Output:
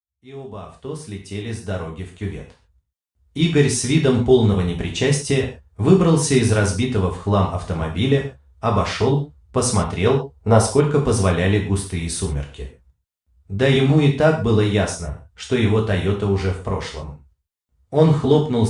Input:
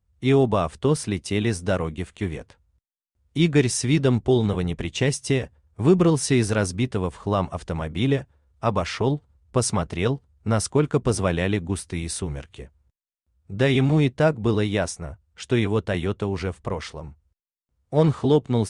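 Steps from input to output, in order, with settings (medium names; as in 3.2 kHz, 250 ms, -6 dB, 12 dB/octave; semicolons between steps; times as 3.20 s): fade-in on the opening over 4.16 s; 10.07–10.75 s: high-order bell 630 Hz +8.5 dB; gated-style reverb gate 160 ms falling, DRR 0 dB; trim +1 dB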